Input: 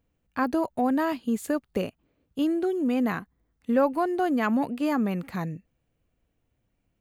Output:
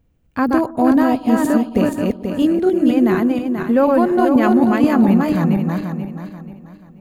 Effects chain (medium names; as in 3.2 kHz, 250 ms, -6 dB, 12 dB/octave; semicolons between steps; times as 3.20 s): backward echo that repeats 242 ms, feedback 57%, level -2 dB; bass shelf 280 Hz +9 dB; bucket-brigade echo 122 ms, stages 1024, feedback 66%, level -19 dB; trim +5 dB